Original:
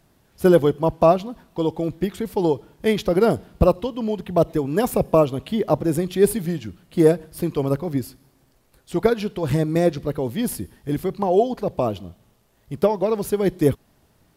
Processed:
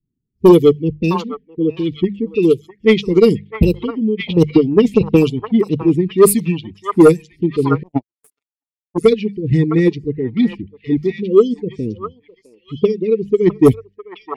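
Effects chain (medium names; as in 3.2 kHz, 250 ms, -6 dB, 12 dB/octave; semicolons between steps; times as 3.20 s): expander on every frequency bin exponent 1.5; level-controlled noise filter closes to 310 Hz, open at -14 dBFS; Chebyshev band-stop 460–1900 Hz, order 5; bass shelf 100 Hz -7.5 dB; hum notches 50/100/150/200 Hz; 4.26–5.31 s: transient shaper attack +8 dB, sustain +3 dB; sine folder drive 5 dB, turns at -7 dBFS; on a send: repeats whose band climbs or falls 657 ms, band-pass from 1.1 kHz, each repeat 1.4 oct, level -0.5 dB; 7.83–8.98 s: on the sum: power-law waveshaper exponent 3; 10.30–10.77 s: distance through air 82 m; trim +5 dB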